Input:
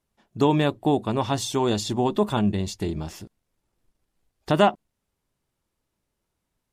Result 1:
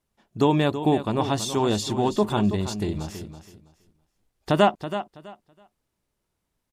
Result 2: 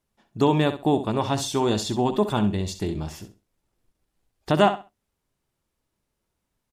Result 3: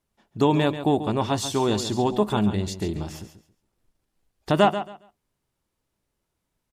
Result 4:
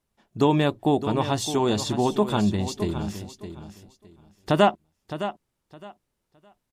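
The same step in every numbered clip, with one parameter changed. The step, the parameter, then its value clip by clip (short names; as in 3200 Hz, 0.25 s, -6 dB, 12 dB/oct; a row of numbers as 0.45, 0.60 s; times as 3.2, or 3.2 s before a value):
feedback echo, time: 327, 65, 137, 613 ms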